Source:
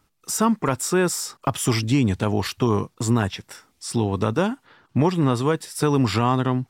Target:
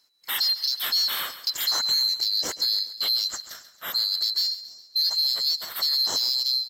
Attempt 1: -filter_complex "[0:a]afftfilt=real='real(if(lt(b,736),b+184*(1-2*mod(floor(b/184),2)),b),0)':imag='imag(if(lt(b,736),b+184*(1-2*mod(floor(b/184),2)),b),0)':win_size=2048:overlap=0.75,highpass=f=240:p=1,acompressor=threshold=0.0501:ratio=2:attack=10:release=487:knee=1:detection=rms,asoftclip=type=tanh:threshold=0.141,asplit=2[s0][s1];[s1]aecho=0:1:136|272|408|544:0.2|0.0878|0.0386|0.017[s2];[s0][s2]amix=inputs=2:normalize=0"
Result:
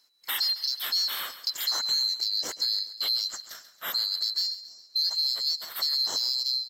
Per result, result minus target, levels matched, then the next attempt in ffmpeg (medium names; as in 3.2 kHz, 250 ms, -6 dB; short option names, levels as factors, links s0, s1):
compression: peak gain reduction +5 dB; 125 Hz band -4.0 dB
-filter_complex "[0:a]afftfilt=real='real(if(lt(b,736),b+184*(1-2*mod(floor(b/184),2)),b),0)':imag='imag(if(lt(b,736),b+184*(1-2*mod(floor(b/184),2)),b),0)':win_size=2048:overlap=0.75,highpass=f=240:p=1,acompressor=threshold=0.15:ratio=2:attack=10:release=487:knee=1:detection=rms,asoftclip=type=tanh:threshold=0.141,asplit=2[s0][s1];[s1]aecho=0:1:136|272|408|544:0.2|0.0878|0.0386|0.017[s2];[s0][s2]amix=inputs=2:normalize=0"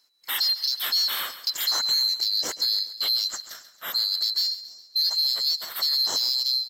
125 Hz band -3.5 dB
-filter_complex "[0:a]afftfilt=real='real(if(lt(b,736),b+184*(1-2*mod(floor(b/184),2)),b),0)':imag='imag(if(lt(b,736),b+184*(1-2*mod(floor(b/184),2)),b),0)':win_size=2048:overlap=0.75,highpass=f=110:p=1,acompressor=threshold=0.15:ratio=2:attack=10:release=487:knee=1:detection=rms,asoftclip=type=tanh:threshold=0.141,asplit=2[s0][s1];[s1]aecho=0:1:136|272|408|544:0.2|0.0878|0.0386|0.017[s2];[s0][s2]amix=inputs=2:normalize=0"